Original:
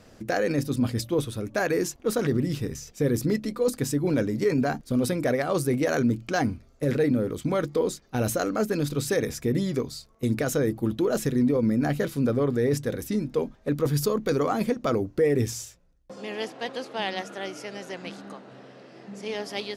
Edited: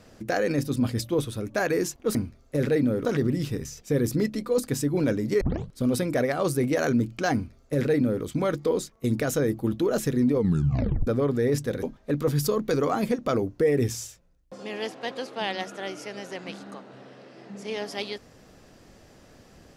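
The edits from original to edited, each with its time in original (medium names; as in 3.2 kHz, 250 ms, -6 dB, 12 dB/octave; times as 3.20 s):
4.51 s: tape start 0.37 s
6.43–7.33 s: copy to 2.15 s
8.02–10.11 s: delete
11.55 s: tape stop 0.71 s
13.02–13.41 s: delete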